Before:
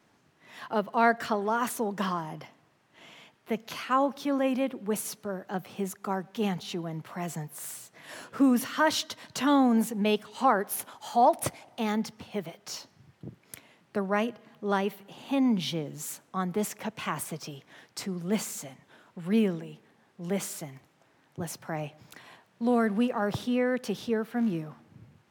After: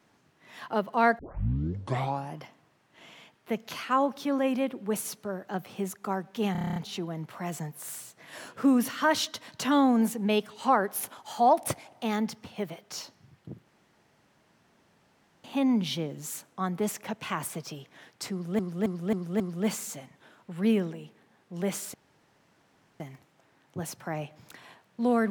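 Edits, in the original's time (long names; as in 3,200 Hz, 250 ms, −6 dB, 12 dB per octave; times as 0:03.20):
0:01.19: tape start 1.18 s
0:06.52: stutter 0.03 s, 9 plays
0:13.42–0:15.20: fill with room tone
0:18.08–0:18.35: repeat, 5 plays
0:20.62: splice in room tone 1.06 s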